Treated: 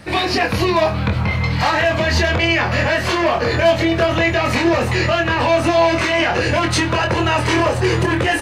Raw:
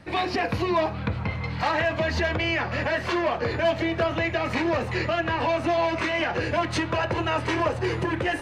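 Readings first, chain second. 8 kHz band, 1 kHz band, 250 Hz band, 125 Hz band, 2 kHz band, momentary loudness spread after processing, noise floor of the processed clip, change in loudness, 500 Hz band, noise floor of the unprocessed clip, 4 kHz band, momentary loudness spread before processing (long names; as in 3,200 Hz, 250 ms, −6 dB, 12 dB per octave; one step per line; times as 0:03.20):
+14.5 dB, +8.0 dB, +8.5 dB, +10.5 dB, +9.0 dB, 2 LU, −21 dBFS, +9.0 dB, +8.0 dB, −32 dBFS, +11.0 dB, 3 LU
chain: high-shelf EQ 5,100 Hz +10.5 dB
brickwall limiter −18 dBFS, peak gain reduction 4.5 dB
double-tracking delay 24 ms −4.5 dB
level +8.5 dB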